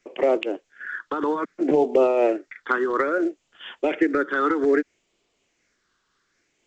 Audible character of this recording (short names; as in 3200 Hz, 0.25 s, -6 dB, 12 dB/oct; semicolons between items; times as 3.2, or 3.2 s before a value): phasing stages 6, 0.62 Hz, lowest notch 620–1600 Hz; tremolo triangle 4.1 Hz, depth 40%; A-law